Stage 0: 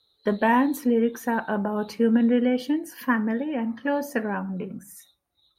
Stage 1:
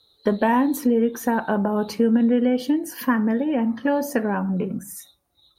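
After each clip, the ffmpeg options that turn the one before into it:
ffmpeg -i in.wav -af "equalizer=frequency=2100:width_type=o:width=1.5:gain=-4.5,acompressor=threshold=-29dB:ratio=2,volume=8.5dB" out.wav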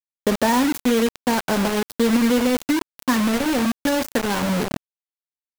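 ffmpeg -i in.wav -af "acrusher=bits=3:mix=0:aa=0.000001" out.wav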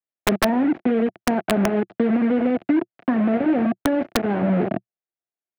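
ffmpeg -i in.wav -filter_complex "[0:a]acrossover=split=400|820[link_01][link_02][link_03];[link_01]acompressor=threshold=-20dB:ratio=4[link_04];[link_02]acompressor=threshold=-31dB:ratio=4[link_05];[link_03]acompressor=threshold=-30dB:ratio=4[link_06];[link_04][link_05][link_06]amix=inputs=3:normalize=0,highpass=120,equalizer=frequency=120:width_type=q:width=4:gain=3,equalizer=frequency=190:width_type=q:width=4:gain=4,equalizer=frequency=350:width_type=q:width=4:gain=8,equalizer=frequency=680:width_type=q:width=4:gain=10,equalizer=frequency=1000:width_type=q:width=4:gain=-6,lowpass=frequency=2300:width=0.5412,lowpass=frequency=2300:width=1.3066,aeval=exprs='(mod(2.82*val(0)+1,2)-1)/2.82':channel_layout=same" out.wav

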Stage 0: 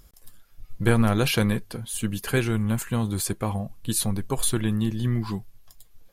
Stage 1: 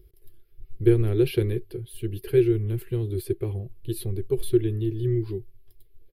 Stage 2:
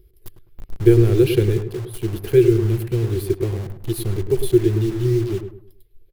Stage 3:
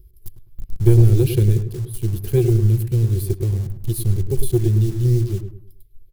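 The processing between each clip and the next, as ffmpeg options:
ffmpeg -i in.wav -af "firequalizer=gain_entry='entry(120,0);entry(250,-21);entry(360,13);entry(550,-13);entry(1000,-22);entry(2100,-10);entry(3000,-10);entry(4500,-13);entry(6800,-29);entry(11000,-9)':delay=0.05:min_phase=1" out.wav
ffmpeg -i in.wav -filter_complex "[0:a]asplit=2[link_01][link_02];[link_02]acrusher=bits=5:mix=0:aa=0.000001,volume=-4dB[link_03];[link_01][link_03]amix=inputs=2:normalize=0,asplit=2[link_04][link_05];[link_05]adelay=104,lowpass=frequency=1300:poles=1,volume=-7.5dB,asplit=2[link_06][link_07];[link_07]adelay=104,lowpass=frequency=1300:poles=1,volume=0.35,asplit=2[link_08][link_09];[link_09]adelay=104,lowpass=frequency=1300:poles=1,volume=0.35,asplit=2[link_10][link_11];[link_11]adelay=104,lowpass=frequency=1300:poles=1,volume=0.35[link_12];[link_04][link_06][link_08][link_10][link_12]amix=inputs=5:normalize=0,volume=1.5dB" out.wav
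ffmpeg -i in.wav -af "bass=frequency=250:gain=15,treble=frequency=4000:gain=13,aeval=exprs='2.82*(cos(1*acos(clip(val(0)/2.82,-1,1)))-cos(1*PI/2))+0.0891*(cos(6*acos(clip(val(0)/2.82,-1,1)))-cos(6*PI/2))':channel_layout=same,volume=-9.5dB" out.wav

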